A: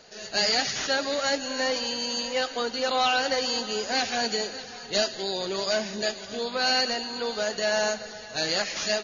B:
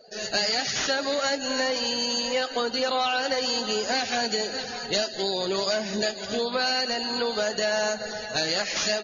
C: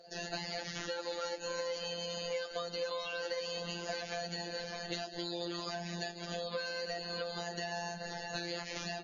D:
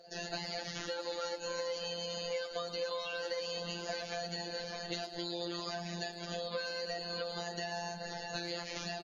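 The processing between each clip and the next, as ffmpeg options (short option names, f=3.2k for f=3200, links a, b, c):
-af "acompressor=threshold=-31dB:ratio=4,afftdn=nr=21:nf=-48,volume=7.5dB"
-filter_complex "[0:a]afftfilt=real='hypot(re,im)*cos(PI*b)':imag='0':win_size=1024:overlap=0.75,acrossover=split=530|3600[a][b][c];[a]acompressor=threshold=-42dB:ratio=4[d];[b]acompressor=threshold=-42dB:ratio=4[e];[c]acompressor=threshold=-48dB:ratio=4[f];[d][e][f]amix=inputs=3:normalize=0"
-filter_complex "[0:a]asplit=2[a][b];[b]adelay=110,highpass=300,lowpass=3.4k,asoftclip=type=hard:threshold=-33.5dB,volume=-11dB[c];[a][c]amix=inputs=2:normalize=0"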